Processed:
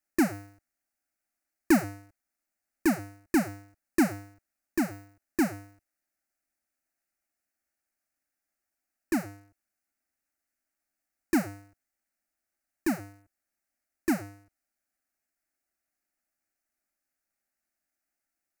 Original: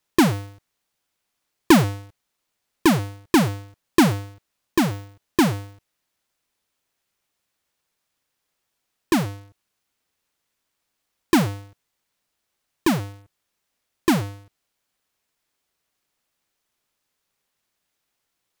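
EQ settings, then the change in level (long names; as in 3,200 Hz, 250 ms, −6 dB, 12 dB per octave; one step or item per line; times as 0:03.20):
phaser with its sweep stopped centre 680 Hz, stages 8
−6.5 dB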